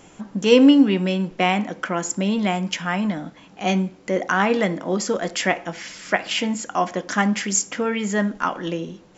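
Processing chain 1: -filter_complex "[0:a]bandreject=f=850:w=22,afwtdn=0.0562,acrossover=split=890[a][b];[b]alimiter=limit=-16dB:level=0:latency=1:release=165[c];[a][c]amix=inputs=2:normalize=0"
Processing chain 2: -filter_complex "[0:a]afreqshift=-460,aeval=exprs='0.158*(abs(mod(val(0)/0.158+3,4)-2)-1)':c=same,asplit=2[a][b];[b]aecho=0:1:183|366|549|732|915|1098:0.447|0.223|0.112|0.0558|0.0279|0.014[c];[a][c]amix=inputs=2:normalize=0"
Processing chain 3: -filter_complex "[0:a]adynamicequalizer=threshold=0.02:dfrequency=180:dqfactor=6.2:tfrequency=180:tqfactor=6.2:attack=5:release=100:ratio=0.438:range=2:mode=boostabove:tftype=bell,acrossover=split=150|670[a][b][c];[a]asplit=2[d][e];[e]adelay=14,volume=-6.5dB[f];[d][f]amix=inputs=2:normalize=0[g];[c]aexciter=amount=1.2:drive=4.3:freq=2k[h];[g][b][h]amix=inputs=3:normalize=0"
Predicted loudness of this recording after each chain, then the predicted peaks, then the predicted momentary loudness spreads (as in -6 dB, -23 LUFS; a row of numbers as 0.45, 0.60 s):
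-22.5, -24.0, -20.0 LUFS; -3.5, -12.0, -2.0 dBFS; 12, 7, 10 LU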